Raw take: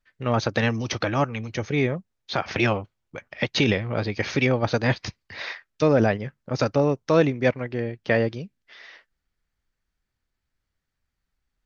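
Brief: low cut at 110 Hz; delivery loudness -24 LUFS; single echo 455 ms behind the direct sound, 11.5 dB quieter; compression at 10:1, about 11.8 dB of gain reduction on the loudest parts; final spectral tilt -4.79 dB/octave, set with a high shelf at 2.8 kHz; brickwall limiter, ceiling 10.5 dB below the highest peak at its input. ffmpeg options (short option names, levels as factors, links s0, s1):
-af "highpass=110,highshelf=f=2800:g=4,acompressor=threshold=0.0501:ratio=10,alimiter=limit=0.0944:level=0:latency=1,aecho=1:1:455:0.266,volume=2.99"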